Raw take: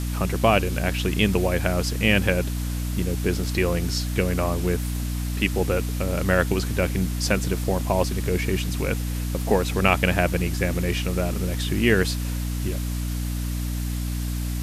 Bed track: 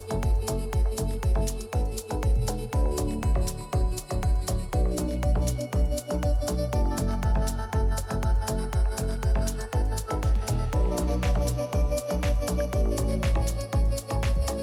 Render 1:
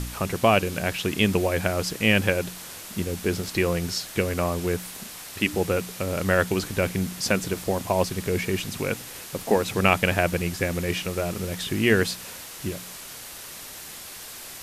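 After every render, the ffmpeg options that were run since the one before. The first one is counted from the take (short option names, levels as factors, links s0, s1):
-af "bandreject=f=60:t=h:w=4,bandreject=f=120:t=h:w=4,bandreject=f=180:t=h:w=4,bandreject=f=240:t=h:w=4,bandreject=f=300:t=h:w=4"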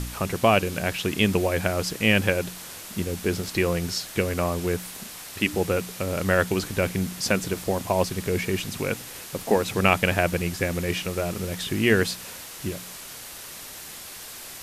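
-af anull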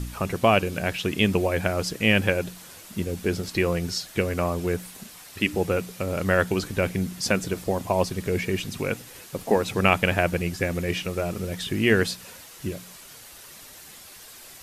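-af "afftdn=nr=7:nf=-40"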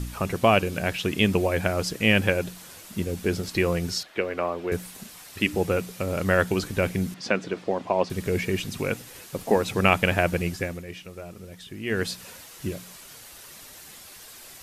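-filter_complex "[0:a]asettb=1/sr,asplit=3[s0][s1][s2];[s0]atrim=end=4.034[s3];[s1]atrim=start=4.03:end=4.72,asetpts=PTS-STARTPTS,afade=t=in:d=0.004:c=qsin,afade=t=out:st=0.686:d=0.004:c=qsin,acrossover=split=280 3700:gain=0.141 1 0.112[s4][s5][s6];[s4][s5][s6]amix=inputs=3:normalize=0[s7];[s2]atrim=start=4.716[s8];[s3][s7]acrossfade=d=0.004:c1=hsin:c2=qsin[s9];[s9][s8]acrossfade=d=0.004:c1=qsin:c2=hsin,asettb=1/sr,asplit=3[s10][s11][s12];[s10]atrim=end=7.144[s13];[s11]atrim=start=7.14:end=8.1,asetpts=PTS-STARTPTS,afade=t=in:d=0.004:c=qsin,afade=t=out:st=0.956:d=0.004:c=qsin,highpass=220,lowpass=3500[s14];[s12]atrim=start=8.096[s15];[s13][s14]acrossfade=d=0.004:c1=hsin:c2=qsin[s16];[s16][s15]acrossfade=d=0.004:c1=qsin:c2=hsin,asplit=3[s17][s18][s19];[s17]atrim=end=10.84,asetpts=PTS-STARTPTS,afade=t=out:st=10.48:d=0.36:silence=0.251189[s20];[s18]atrim=start=10.84:end=11.84,asetpts=PTS-STARTPTS,volume=0.251[s21];[s19]atrim=start=11.84,asetpts=PTS-STARTPTS,afade=t=in:d=0.36:silence=0.251189[s22];[s20][s21][s22]concat=n=3:v=0:a=1"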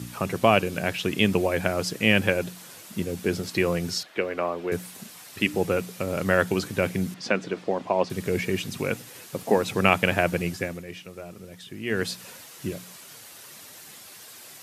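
-af "highpass=f=100:w=0.5412,highpass=f=100:w=1.3066"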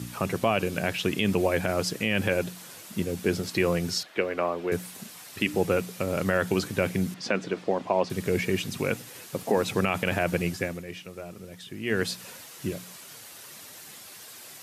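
-af "alimiter=limit=0.266:level=0:latency=1:release=36"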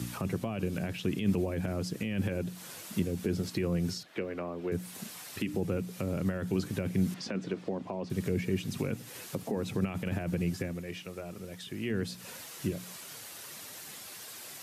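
-filter_complex "[0:a]alimiter=limit=0.168:level=0:latency=1:release=21,acrossover=split=330[s0][s1];[s1]acompressor=threshold=0.0112:ratio=6[s2];[s0][s2]amix=inputs=2:normalize=0"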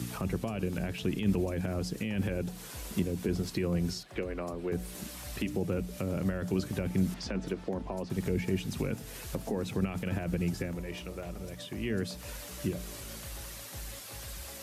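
-filter_complex "[1:a]volume=0.0944[s0];[0:a][s0]amix=inputs=2:normalize=0"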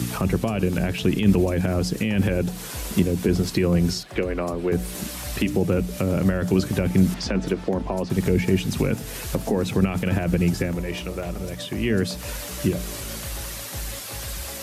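-af "volume=3.35"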